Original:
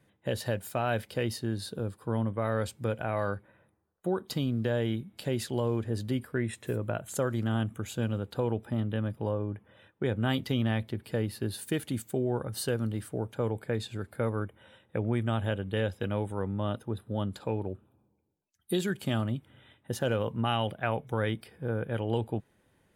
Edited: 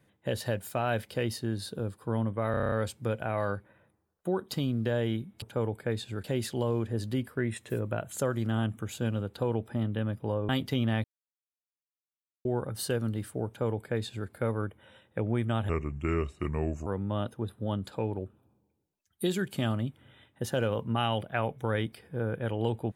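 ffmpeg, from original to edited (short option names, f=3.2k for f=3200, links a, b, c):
-filter_complex "[0:a]asplit=15[a][b][c][d][e][f][g][h][i][j][k][l][m][n][o];[a]atrim=end=2.542[p];[b]atrim=start=2.508:end=2.542[q];[c]atrim=start=2.508:end=2.542[r];[d]atrim=start=2.508:end=2.542[s];[e]atrim=start=2.508:end=2.542[t];[f]atrim=start=2.508:end=2.542[u];[g]atrim=start=2.508:end=2.542[v];[h]atrim=start=2.508:end=5.212[w];[i]atrim=start=13.248:end=14.072[x];[j]atrim=start=5.208:end=9.462[y];[k]atrim=start=10.268:end=10.82,asetpts=PTS-STARTPTS,afade=t=out:st=0.548:d=0.004:c=hsin[z];[l]atrim=start=10.82:end=12.23,asetpts=PTS-STARTPTS,volume=0[aa];[m]atrim=start=12.23:end=15.474,asetpts=PTS-STARTPTS,afade=t=in:d=0.004:c=hsin[ab];[n]atrim=start=15.47:end=16.35,asetpts=PTS-STARTPTS,asetrate=33075,aresample=44100[ac];[o]atrim=start=16.346[ad];[p][q]acrossfade=d=0.004:c1=hsin:c2=hsin[ae];[ae][r]acrossfade=d=0.004:c1=hsin:c2=hsin[af];[af][s]acrossfade=d=0.004:c1=hsin:c2=hsin[ag];[ag][t]acrossfade=d=0.004:c1=hsin:c2=hsin[ah];[ah][u]acrossfade=d=0.004:c1=hsin:c2=hsin[ai];[ai][v]acrossfade=d=0.004:c1=hsin:c2=hsin[aj];[aj][w]acrossfade=d=0.004:c1=hsin:c2=hsin[ak];[ak][x]acrossfade=d=0.004:c1=hsin:c2=hsin[al];[al][y]acrossfade=d=0.004:c1=hsin:c2=hsin[am];[z][aa][ab]concat=n=3:v=0:a=1[an];[am][an]acrossfade=d=0.004:c1=hsin:c2=hsin[ao];[ao][ac]acrossfade=d=0.004:c1=hsin:c2=hsin[ap];[ap][ad]acrossfade=d=0.004:c1=hsin:c2=hsin"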